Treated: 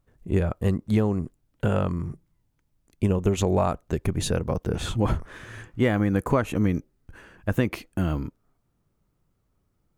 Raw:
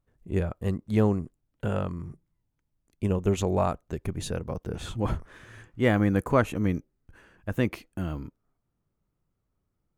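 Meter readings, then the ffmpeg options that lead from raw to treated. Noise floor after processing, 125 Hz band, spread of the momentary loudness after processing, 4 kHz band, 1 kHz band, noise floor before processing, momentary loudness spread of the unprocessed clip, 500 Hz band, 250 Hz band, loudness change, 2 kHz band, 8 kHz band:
-72 dBFS, +3.5 dB, 9 LU, +5.0 dB, +1.5 dB, -79 dBFS, 12 LU, +2.0 dB, +2.5 dB, +2.5 dB, +1.0 dB, +5.5 dB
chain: -af "acompressor=threshold=-24dB:ratio=12,volume=7dB"

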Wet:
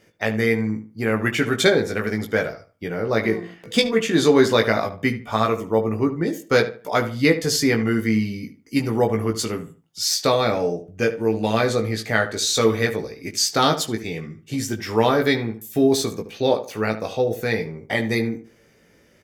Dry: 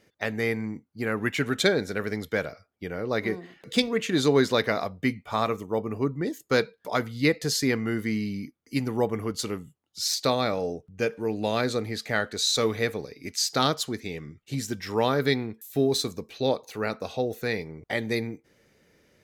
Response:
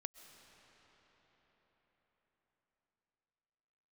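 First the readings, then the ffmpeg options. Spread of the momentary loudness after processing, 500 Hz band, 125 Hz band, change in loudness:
10 LU, +6.5 dB, +6.0 dB, +6.0 dB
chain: -filter_complex "[0:a]bandreject=f=4k:w=10,asplit=2[a][b];[b]adelay=18,volume=-4.5dB[c];[a][c]amix=inputs=2:normalize=0,asplit=2[d][e];[e]adelay=74,lowpass=f=2.6k:p=1,volume=-12dB,asplit=2[f][g];[g]adelay=74,lowpass=f=2.6k:p=1,volume=0.28,asplit=2[h][i];[i]adelay=74,lowpass=f=2.6k:p=1,volume=0.28[j];[d][f][h][j]amix=inputs=4:normalize=0,volume=4.5dB"

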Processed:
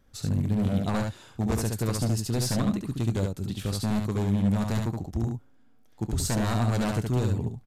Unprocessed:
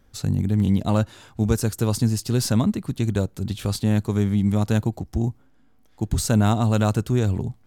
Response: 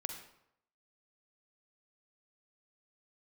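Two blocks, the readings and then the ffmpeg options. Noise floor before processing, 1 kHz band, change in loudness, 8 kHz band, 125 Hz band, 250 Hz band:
-56 dBFS, -4.0 dB, -5.0 dB, -3.5 dB, -5.5 dB, -5.0 dB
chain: -af "aeval=exprs='0.178*(abs(mod(val(0)/0.178+3,4)-2)-1)':c=same,aecho=1:1:24|71:0.158|0.631,aresample=32000,aresample=44100,volume=-5dB"

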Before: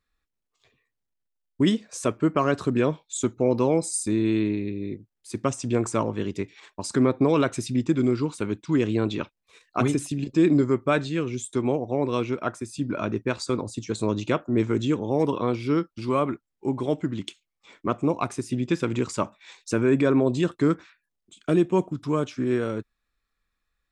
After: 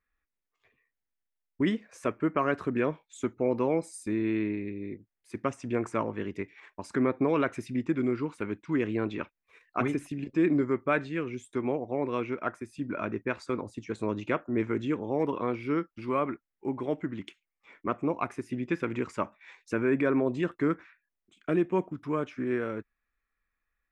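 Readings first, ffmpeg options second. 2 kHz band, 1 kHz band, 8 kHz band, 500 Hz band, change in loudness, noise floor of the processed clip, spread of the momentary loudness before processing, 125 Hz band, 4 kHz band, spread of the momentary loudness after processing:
-1.5 dB, -3.5 dB, under -15 dB, -5.0 dB, -5.5 dB, under -85 dBFS, 10 LU, -9.0 dB, -11.5 dB, 10 LU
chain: -af "equalizer=f=125:t=o:w=1:g=-5,equalizer=f=2k:t=o:w=1:g=8,equalizer=f=4k:t=o:w=1:g=-9,equalizer=f=8k:t=o:w=1:g=-12,volume=-5dB"

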